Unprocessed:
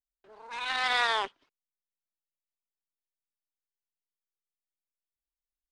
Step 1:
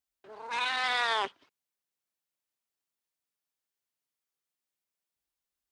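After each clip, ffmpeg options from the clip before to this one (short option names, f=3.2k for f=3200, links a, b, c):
-af "highpass=73,alimiter=level_in=0.5dB:limit=-24dB:level=0:latency=1:release=50,volume=-0.5dB,volume=5.5dB"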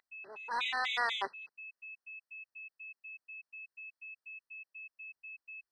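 -filter_complex "[0:a]aeval=exprs='val(0)+0.00631*sin(2*PI*2600*n/s)':c=same,asplit=2[a][b];[b]highpass=f=720:p=1,volume=5dB,asoftclip=type=tanh:threshold=-18.5dB[c];[a][c]amix=inputs=2:normalize=0,lowpass=f=4.1k:p=1,volume=-6dB,afftfilt=real='re*gt(sin(2*PI*4.1*pts/sr)*(1-2*mod(floor(b*sr/1024/2000),2)),0)':imag='im*gt(sin(2*PI*4.1*pts/sr)*(1-2*mod(floor(b*sr/1024/2000),2)),0)':win_size=1024:overlap=0.75,volume=-1dB"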